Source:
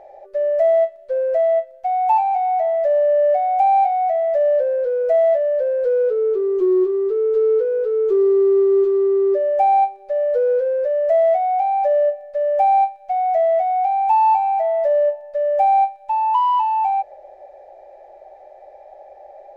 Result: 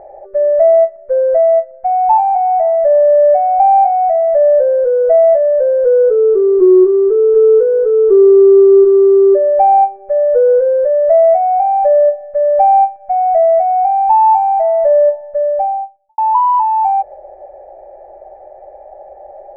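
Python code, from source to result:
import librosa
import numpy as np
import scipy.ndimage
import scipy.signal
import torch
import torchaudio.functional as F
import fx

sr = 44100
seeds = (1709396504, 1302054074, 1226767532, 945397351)

y = fx.studio_fade_out(x, sr, start_s=15.13, length_s=1.05)
y = scipy.signal.sosfilt(scipy.signal.butter(4, 1700.0, 'lowpass', fs=sr, output='sos'), y)
y = fx.low_shelf(y, sr, hz=440.0, db=9.0)
y = y * 10.0 ** (4.0 / 20.0)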